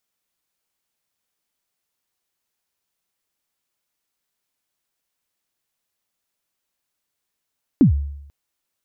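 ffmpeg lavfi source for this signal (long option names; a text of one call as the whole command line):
ffmpeg -f lavfi -i "aevalsrc='0.473*pow(10,-3*t/0.8)*sin(2*PI*(320*0.112/log(71/320)*(exp(log(71/320)*min(t,0.112)/0.112)-1)+71*max(t-0.112,0)))':duration=0.49:sample_rate=44100" out.wav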